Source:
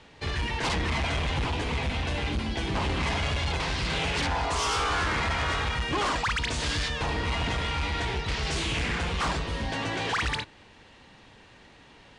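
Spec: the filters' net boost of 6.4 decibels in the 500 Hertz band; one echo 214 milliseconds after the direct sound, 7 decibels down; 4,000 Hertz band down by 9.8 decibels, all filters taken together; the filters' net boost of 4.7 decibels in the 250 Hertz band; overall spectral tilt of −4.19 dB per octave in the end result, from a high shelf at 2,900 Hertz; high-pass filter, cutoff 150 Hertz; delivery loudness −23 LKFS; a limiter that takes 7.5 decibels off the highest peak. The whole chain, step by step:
high-pass filter 150 Hz
parametric band 250 Hz +5 dB
parametric band 500 Hz +7 dB
high-shelf EQ 2,900 Hz −7.5 dB
parametric band 4,000 Hz −8 dB
brickwall limiter −23.5 dBFS
single-tap delay 214 ms −7 dB
level +8.5 dB

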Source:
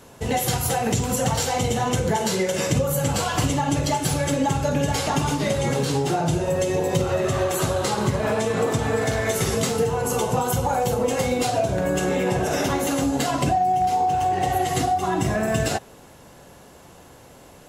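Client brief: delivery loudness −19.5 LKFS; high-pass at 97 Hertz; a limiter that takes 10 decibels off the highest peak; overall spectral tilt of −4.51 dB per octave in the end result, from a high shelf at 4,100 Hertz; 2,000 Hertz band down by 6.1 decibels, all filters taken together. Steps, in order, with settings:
high-pass filter 97 Hz
parametric band 2,000 Hz −9 dB
high-shelf EQ 4,100 Hz +4 dB
level +8 dB
brickwall limiter −11 dBFS

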